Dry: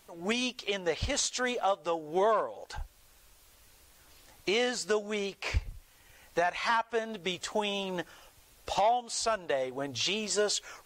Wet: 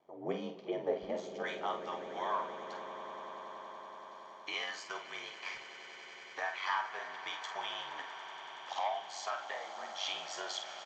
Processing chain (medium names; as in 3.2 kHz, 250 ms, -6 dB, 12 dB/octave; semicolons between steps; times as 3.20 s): ladder band-pass 610 Hz, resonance 30%, from 1.42 s 1.6 kHz; ring modulator 47 Hz; doubling 48 ms -8 dB; echo with a slow build-up 94 ms, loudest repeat 8, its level -17 dB; reverberation RT60 0.70 s, pre-delay 3 ms, DRR 11 dB; trim +7.5 dB